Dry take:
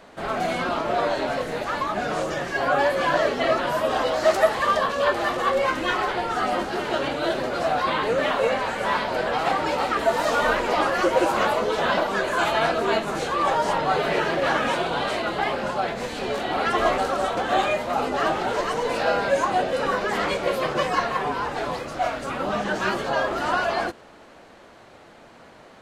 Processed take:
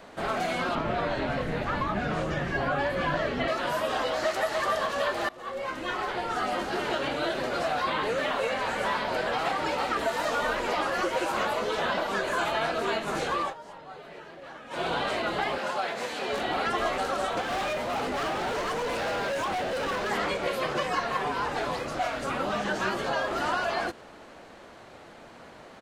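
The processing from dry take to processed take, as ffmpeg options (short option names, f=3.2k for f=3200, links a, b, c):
-filter_complex "[0:a]asettb=1/sr,asplit=3[a][b][c];[a]atrim=end=0.754[d];[b]atrim=start=0.75:end=3.48,asetpts=PTS-STARTPTS,afade=t=in:d=0.004:c=qsin,afade=t=out:st=2.726:d=0.004:c=qsin,bass=f=250:g=13,treble=f=4k:g=-12[e];[c]atrim=start=3.476[f];[d][e]acrossfade=d=0.004:c1=hsin:c2=qsin[g];[g][f]acrossfade=d=0.004:c1=qsin:c2=hsin,asplit=2[h][i];[i]afade=t=in:st=4.07:d=0.01,afade=t=out:st=4.57:d=0.01,aecho=0:1:290|580|870|1160|1450|1740:0.595662|0.297831|0.148916|0.0744578|0.0372289|0.0186144[j];[h][j]amix=inputs=2:normalize=0,asettb=1/sr,asplit=3[k][l][m];[k]atrim=end=15.584[n];[l]atrim=start=15.58:end=16.33,asetpts=PTS-STARTPTS,afade=t=in:d=0.004:c=qsin,afade=t=out:st=0.746:d=0.004:c=qsin,highpass=f=550:p=1[o];[m]atrim=start=16.326[p];[n][o]acrossfade=d=0.004:c1=hsin:c2=qsin[q];[q][p]acrossfade=d=0.004:c1=qsin:c2=hsin,asettb=1/sr,asplit=3[r][s][t];[r]atrim=end=17.414[u];[s]atrim=start=17.41:end=20.11,asetpts=PTS-STARTPTS,afade=t=in:d=0.004:c=qsin,afade=t=out:st=2.696:d=0.004:c=qsin,asoftclip=type=hard:threshold=-26.5dB[v];[t]atrim=start=20.106[w];[u][v]acrossfade=d=0.004:c1=hsin:c2=qsin[x];[x][w]acrossfade=d=0.004:c1=qsin:c2=hsin,asplit=4[y][z][aa][ab];[y]atrim=end=5.29,asetpts=PTS-STARTPTS,afade=t=out:st=5.286:d=0.004:c=hsin:silence=0.0794328[ac];[z]atrim=start=5.29:end=13.54,asetpts=PTS-STARTPTS,afade=t=in:d=1.6:silence=0.0794328,afade=t=out:st=8.06:d=0.19:silence=0.0794328[ad];[aa]atrim=start=13.54:end=14.7,asetpts=PTS-STARTPTS,volume=-22dB[ae];[ab]atrim=start=14.7,asetpts=PTS-STARTPTS,afade=t=in:d=0.19:silence=0.0794328[af];[ac][ad][ae][af]concat=n=4:v=0:a=1,acrossover=split=1400|3200[ag][ah][ai];[ag]acompressor=threshold=-28dB:ratio=4[aj];[ah]acompressor=threshold=-34dB:ratio=4[ak];[ai]acompressor=threshold=-42dB:ratio=4[al];[aj][ak][al]amix=inputs=3:normalize=0"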